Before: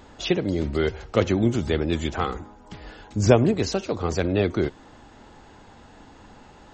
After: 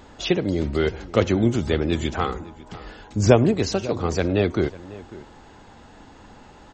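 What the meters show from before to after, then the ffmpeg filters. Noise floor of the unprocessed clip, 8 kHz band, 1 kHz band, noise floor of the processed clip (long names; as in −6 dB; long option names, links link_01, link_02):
−49 dBFS, +1.5 dB, +1.5 dB, −48 dBFS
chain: -filter_complex "[0:a]asplit=2[link_01][link_02];[link_02]adelay=548.1,volume=-18dB,highshelf=frequency=4000:gain=-12.3[link_03];[link_01][link_03]amix=inputs=2:normalize=0,volume=1.5dB"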